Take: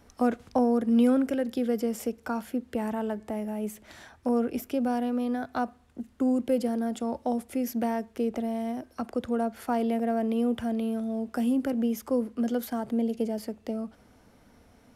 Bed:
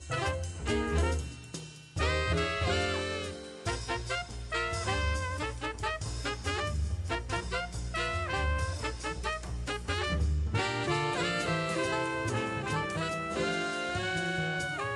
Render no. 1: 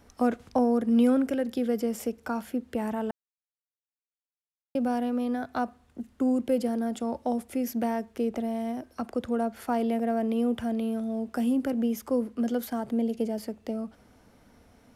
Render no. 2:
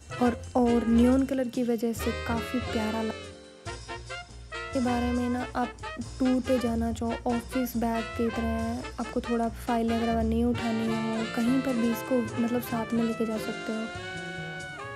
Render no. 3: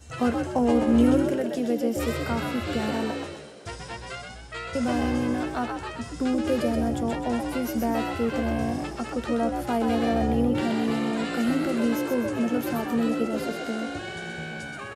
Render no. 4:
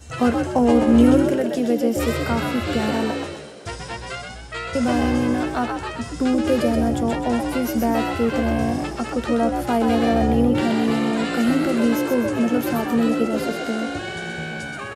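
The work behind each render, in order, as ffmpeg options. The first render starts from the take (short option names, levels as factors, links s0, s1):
-filter_complex "[0:a]asplit=3[s0][s1][s2];[s0]atrim=end=3.11,asetpts=PTS-STARTPTS,afade=t=out:st=3.106:d=0.004:c=hsin[s3];[s1]atrim=start=3.11:end=4.75,asetpts=PTS-STARTPTS,volume=0[s4];[s2]atrim=start=4.75,asetpts=PTS-STARTPTS,afade=t=in:d=0.004:c=hsin[s5];[s3][s4][s5]concat=n=3:v=0:a=1"
-filter_complex "[1:a]volume=0.596[s0];[0:a][s0]amix=inputs=2:normalize=0"
-filter_complex "[0:a]asplit=2[s0][s1];[s1]adelay=13,volume=0.266[s2];[s0][s2]amix=inputs=2:normalize=0,asplit=2[s3][s4];[s4]asplit=5[s5][s6][s7][s8][s9];[s5]adelay=127,afreqshift=61,volume=0.562[s10];[s6]adelay=254,afreqshift=122,volume=0.232[s11];[s7]adelay=381,afreqshift=183,volume=0.0944[s12];[s8]adelay=508,afreqshift=244,volume=0.0389[s13];[s9]adelay=635,afreqshift=305,volume=0.0158[s14];[s10][s11][s12][s13][s14]amix=inputs=5:normalize=0[s15];[s3][s15]amix=inputs=2:normalize=0"
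-af "volume=1.88"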